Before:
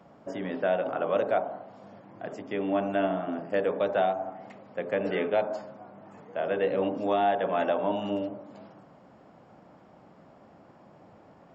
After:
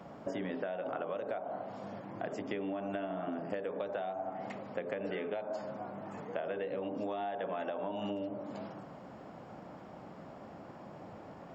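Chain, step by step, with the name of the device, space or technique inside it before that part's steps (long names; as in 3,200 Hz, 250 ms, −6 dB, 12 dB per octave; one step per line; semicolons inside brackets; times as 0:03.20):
serial compression, leveller first (downward compressor, threshold −29 dBFS, peak gain reduction 9 dB; downward compressor 5 to 1, threshold −40 dBFS, peak gain reduction 11.5 dB)
level +5 dB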